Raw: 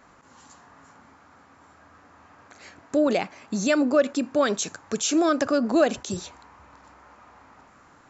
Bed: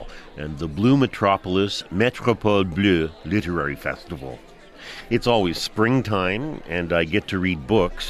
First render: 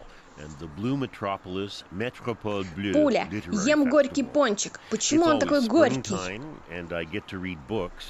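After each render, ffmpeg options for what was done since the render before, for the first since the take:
-filter_complex "[1:a]volume=-11dB[a];[0:a][a]amix=inputs=2:normalize=0"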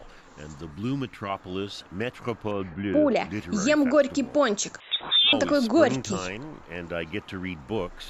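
-filter_complex "[0:a]asettb=1/sr,asplit=3[a][b][c];[a]atrim=end=0.714[d];[b]atrim=start=0.71:end=1.3,asetpts=PTS-STARTPTS,afade=t=in:d=0.004:c=qsin,afade=t=out:st=0.586:d=0.004:c=qsin,equalizer=f=650:t=o:w=1.2:g=-8[e];[c]atrim=start=1.296[f];[d][e]acrossfade=d=0.004:c1=hsin:c2=qsin[g];[g][f]acrossfade=d=0.004:c1=qsin:c2=hsin,asettb=1/sr,asplit=3[h][i][j];[h]atrim=end=2.514[k];[i]atrim=start=2.51:end=3.16,asetpts=PTS-STARTPTS,afade=t=in:d=0.004:c=qsin,afade=t=out:st=0.646:d=0.004:c=qsin,lowpass=1.9k[l];[j]atrim=start=3.156[m];[k][l]acrossfade=d=0.004:c1=hsin:c2=qsin[n];[n][m]acrossfade=d=0.004:c1=qsin:c2=hsin,asettb=1/sr,asplit=3[o][p][q];[o]atrim=end=4.804[r];[p]atrim=start=4.8:end=5.33,asetpts=PTS-STARTPTS,afade=t=in:d=0.004:c=qsin,afade=t=out:st=0.526:d=0.004:c=qsin,lowpass=f=3.3k:t=q:w=0.5098,lowpass=f=3.3k:t=q:w=0.6013,lowpass=f=3.3k:t=q:w=0.9,lowpass=f=3.3k:t=q:w=2.563,afreqshift=-3900[s];[q]atrim=start=5.326[t];[r][s]acrossfade=d=0.004:c1=hsin:c2=qsin[u];[u][t]acrossfade=d=0.004:c1=qsin:c2=hsin"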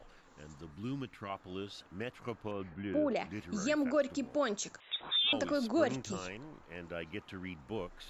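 -af "volume=-10.5dB"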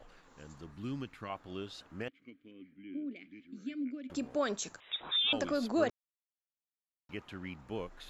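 -filter_complex "[0:a]asettb=1/sr,asplit=3[a][b][c];[a]atrim=end=2.084[d];[b]atrim=start=2.08:end=4.1,asetpts=PTS-STARTPTS,afade=t=in:d=0.004:c=qsin,afade=t=out:st=2.016:d=0.004:c=qsin,asplit=3[e][f][g];[e]bandpass=f=270:t=q:w=8,volume=0dB[h];[f]bandpass=f=2.29k:t=q:w=8,volume=-6dB[i];[g]bandpass=f=3.01k:t=q:w=8,volume=-9dB[j];[h][i][j]amix=inputs=3:normalize=0[k];[c]atrim=start=4.096[l];[d][k]acrossfade=d=0.004:c1=hsin:c2=qsin[m];[m][l]acrossfade=d=0.004:c1=qsin:c2=hsin,asplit=3[n][o][p];[n]atrim=end=5.9,asetpts=PTS-STARTPTS,afade=t=out:st=5.896:d=0.004:c=hsin[q];[o]atrim=start=5.9:end=7.09,asetpts=PTS-STARTPTS,volume=0[r];[p]atrim=start=7.09,asetpts=PTS-STARTPTS,afade=t=in:d=0.004:c=hsin[s];[q][r][s]concat=n=3:v=0:a=1"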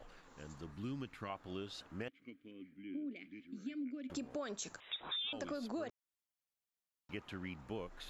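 -af "alimiter=level_in=1.5dB:limit=-24dB:level=0:latency=1:release=291,volume=-1.5dB,acompressor=threshold=-40dB:ratio=3"

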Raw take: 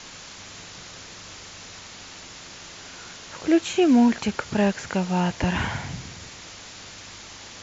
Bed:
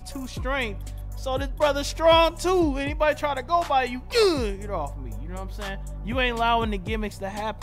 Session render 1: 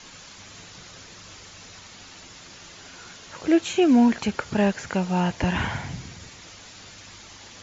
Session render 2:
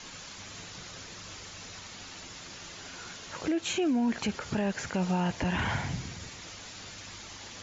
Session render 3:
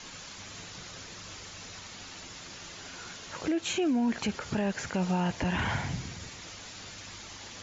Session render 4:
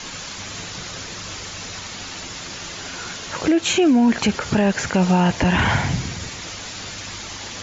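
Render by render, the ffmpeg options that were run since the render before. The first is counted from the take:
-af "afftdn=nr=6:nf=-43"
-af "acompressor=threshold=-21dB:ratio=6,alimiter=limit=-21.5dB:level=0:latency=1:release=20"
-af anull
-af "volume=12dB"

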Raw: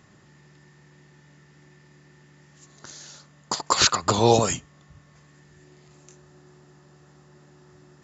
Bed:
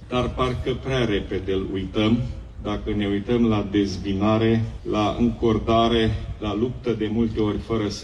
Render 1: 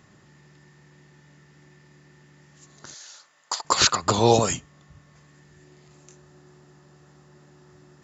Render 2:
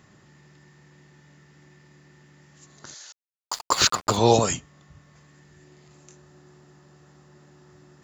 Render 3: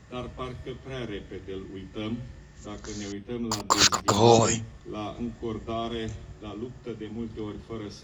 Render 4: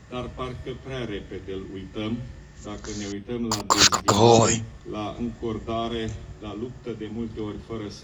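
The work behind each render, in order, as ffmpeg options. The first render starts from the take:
-filter_complex "[0:a]asettb=1/sr,asplit=3[a][b][c];[a]atrim=end=2.944[d];[b]atrim=start=2.94:end=3.65,asetpts=PTS-STARTPTS,afade=t=in:d=0.004:c=qsin,afade=t=out:st=0.706:d=0.004:c=qsin,highpass=750[e];[c]atrim=start=3.646[f];[d][e]acrossfade=d=0.004:c1=hsin:c2=qsin[g];[g][f]acrossfade=d=0.004:c1=qsin:c2=hsin"
-filter_complex "[0:a]asettb=1/sr,asplit=3[a][b][c];[a]atrim=end=3.124[d];[b]atrim=start=3.12:end=4.17,asetpts=PTS-STARTPTS,afade=t=in:d=0.004:c=qsin,afade=t=out:st=1.046:d=0.004:c=qsin,aeval=exprs='sgn(val(0))*max(abs(val(0))-0.0178,0)':c=same[e];[c]atrim=start=4.166[f];[d][e]acrossfade=d=0.004:c1=hsin:c2=qsin[g];[g][f]acrossfade=d=0.004:c1=qsin:c2=hsin"
-filter_complex "[1:a]volume=-13dB[a];[0:a][a]amix=inputs=2:normalize=0"
-af "volume=3.5dB,alimiter=limit=-3dB:level=0:latency=1"

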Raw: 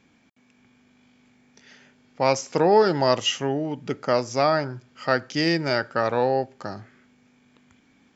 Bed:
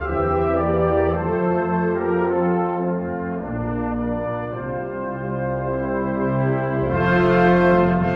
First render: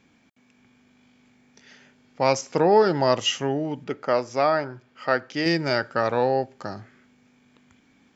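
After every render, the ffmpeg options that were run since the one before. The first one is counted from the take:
-filter_complex "[0:a]asettb=1/sr,asplit=3[a][b][c];[a]atrim=end=2.414[d];[b]atrim=start=2.41:end=3.19,asetpts=PTS-STARTPTS,afade=t=in:d=0.004:c=qsin,afade=t=out:st=0.776:d=0.004:c=qsin,highshelf=f=4.4k:g=-5.5[e];[c]atrim=start=3.186[f];[d][e]acrossfade=d=0.004:c1=hsin:c2=qsin[g];[g][f]acrossfade=d=0.004:c1=qsin:c2=hsin,asettb=1/sr,asplit=3[h][i][j];[h]atrim=end=3.844[k];[i]atrim=start=3.84:end=5.46,asetpts=PTS-STARTPTS,afade=t=in:d=0.004:c=qsin,afade=t=out:st=1.616:d=0.004:c=qsin,bass=f=250:g=-7,treble=f=4k:g=-9[l];[j]atrim=start=5.456[m];[k][l]acrossfade=d=0.004:c1=hsin:c2=qsin[n];[n][m]acrossfade=d=0.004:c1=qsin:c2=hsin"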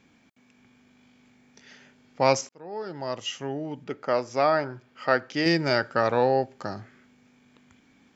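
-filter_complex "[0:a]asplit=2[a][b];[a]atrim=end=2.49,asetpts=PTS-STARTPTS,afade=t=out:st=2.486:d=0.004:c=hsin[c];[b]atrim=start=2.49,asetpts=PTS-STARTPTS,afade=t=in:d=2.21[d];[c][d]concat=n=2:v=0:a=1"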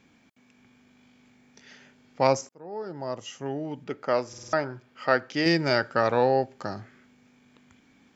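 -filter_complex "[0:a]asettb=1/sr,asplit=3[a][b][c];[a]atrim=end=2.274[d];[b]atrim=start=2.27:end=3.46,asetpts=PTS-STARTPTS,afade=t=in:d=0.004:c=qsin,afade=t=out:st=1.186:d=0.004:c=qsin,equalizer=f=3.1k:w=0.68:g=-9.5[e];[c]atrim=start=3.456[f];[d][e]acrossfade=d=0.004:c1=hsin:c2=qsin[g];[g][f]acrossfade=d=0.004:c1=qsin:c2=hsin,asplit=6[h][i][j][k][l][m];[h]atrim=end=4.332[n];[i]atrim=start=4.278:end=4.332[o];[j]atrim=start=4.278:end=4.332[p];[k]atrim=start=4.278:end=4.332[q];[l]atrim=start=4.278:end=4.332[r];[m]atrim=start=4.528[s];[n][o]acrossfade=d=0.004:c1=hsin:c2=hsin[t];[t][p]acrossfade=d=0.004:c1=hsin:c2=hsin[u];[u][q]acrossfade=d=0.004:c1=hsin:c2=hsin[v];[v][r]acrossfade=d=0.004:c1=hsin:c2=hsin[w];[w][s]acrossfade=d=0.004:c1=hsin:c2=hsin"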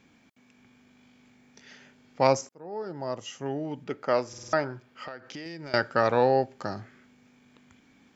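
-filter_complex "[0:a]asettb=1/sr,asplit=3[a][b][c];[a]atrim=end=5.044[d];[b]atrim=start=5.04:end=5.74,asetpts=PTS-STARTPTS,afade=t=in:d=0.004:c=qsin,afade=t=out:st=0.696:d=0.004:c=qsin,acompressor=threshold=-37dB:ratio=6:attack=3.2:release=140:knee=1:detection=peak[e];[c]atrim=start=5.736[f];[d][e]acrossfade=d=0.004:c1=hsin:c2=qsin[g];[g][f]acrossfade=d=0.004:c1=qsin:c2=hsin"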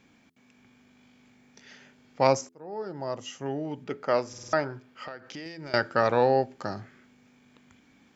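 -af "bandreject=f=84.5:t=h:w=4,bandreject=f=169:t=h:w=4,bandreject=f=253.5:t=h:w=4,bandreject=f=338:t=h:w=4,bandreject=f=422.5:t=h:w=4"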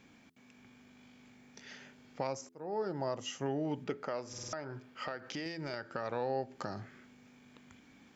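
-af "acompressor=threshold=-28dB:ratio=6,alimiter=limit=-23.5dB:level=0:latency=1:release=300"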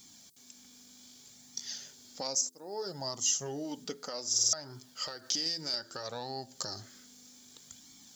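-af "aexciter=amount=6.2:drive=9.6:freq=3.7k,flanger=delay=0.9:depth=3.3:regen=-37:speed=0.63:shape=sinusoidal"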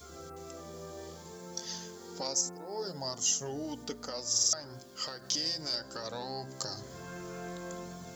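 -filter_complex "[1:a]volume=-27dB[a];[0:a][a]amix=inputs=2:normalize=0"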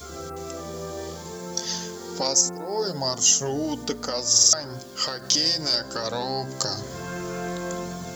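-af "volume=11dB"

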